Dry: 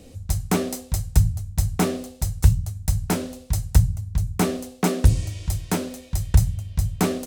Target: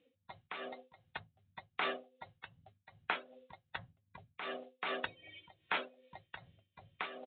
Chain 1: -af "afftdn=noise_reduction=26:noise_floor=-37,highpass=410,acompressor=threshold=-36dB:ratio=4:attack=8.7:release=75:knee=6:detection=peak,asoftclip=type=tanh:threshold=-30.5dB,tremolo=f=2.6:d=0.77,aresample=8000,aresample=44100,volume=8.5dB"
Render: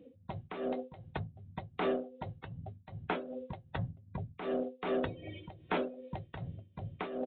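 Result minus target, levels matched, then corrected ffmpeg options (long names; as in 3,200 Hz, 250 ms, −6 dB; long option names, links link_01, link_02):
500 Hz band +7.5 dB; soft clipping: distortion +9 dB
-af "afftdn=noise_reduction=26:noise_floor=-37,highpass=1400,acompressor=threshold=-36dB:ratio=4:attack=8.7:release=75:knee=6:detection=peak,asoftclip=type=tanh:threshold=-22.5dB,tremolo=f=2.6:d=0.77,aresample=8000,aresample=44100,volume=8.5dB"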